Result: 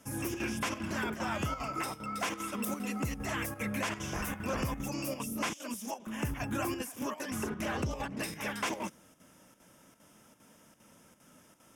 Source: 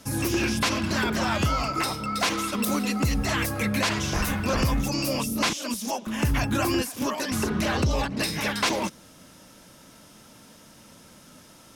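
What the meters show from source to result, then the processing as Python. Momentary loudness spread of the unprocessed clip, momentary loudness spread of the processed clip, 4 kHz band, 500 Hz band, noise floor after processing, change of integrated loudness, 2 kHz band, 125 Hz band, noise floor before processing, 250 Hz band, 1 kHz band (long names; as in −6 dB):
3 LU, 3 LU, −13.5 dB, −9.0 dB, −61 dBFS, −10.0 dB, −9.0 dB, −11.0 dB, −51 dBFS, −9.5 dB, −8.5 dB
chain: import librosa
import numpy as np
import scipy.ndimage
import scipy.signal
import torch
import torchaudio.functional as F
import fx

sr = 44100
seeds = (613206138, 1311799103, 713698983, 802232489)

y = fx.peak_eq(x, sr, hz=4300.0, db=-12.5, octaves=0.46)
y = fx.notch(y, sr, hz=3900.0, q=21.0)
y = fx.chopper(y, sr, hz=2.5, depth_pct=60, duty_pct=85)
y = fx.low_shelf(y, sr, hz=81.0, db=-8.0)
y = y * librosa.db_to_amplitude(-8.0)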